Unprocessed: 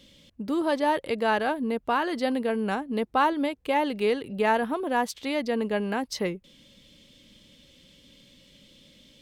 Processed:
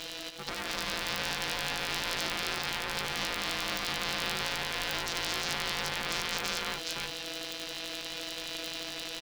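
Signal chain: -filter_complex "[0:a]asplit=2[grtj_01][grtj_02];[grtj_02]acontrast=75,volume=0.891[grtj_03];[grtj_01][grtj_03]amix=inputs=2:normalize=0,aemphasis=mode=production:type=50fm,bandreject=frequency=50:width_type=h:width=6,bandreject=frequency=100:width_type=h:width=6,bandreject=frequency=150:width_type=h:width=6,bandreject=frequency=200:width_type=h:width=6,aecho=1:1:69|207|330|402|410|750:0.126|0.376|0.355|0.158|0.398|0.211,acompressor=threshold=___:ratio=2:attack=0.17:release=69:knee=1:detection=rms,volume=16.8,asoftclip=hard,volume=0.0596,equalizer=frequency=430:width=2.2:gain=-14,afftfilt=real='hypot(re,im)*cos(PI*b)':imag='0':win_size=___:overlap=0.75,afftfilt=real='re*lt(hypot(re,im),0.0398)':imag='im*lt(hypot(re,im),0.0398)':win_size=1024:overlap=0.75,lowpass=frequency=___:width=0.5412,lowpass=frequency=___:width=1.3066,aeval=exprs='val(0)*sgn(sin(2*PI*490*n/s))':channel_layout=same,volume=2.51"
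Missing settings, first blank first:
0.112, 1024, 5.3k, 5.3k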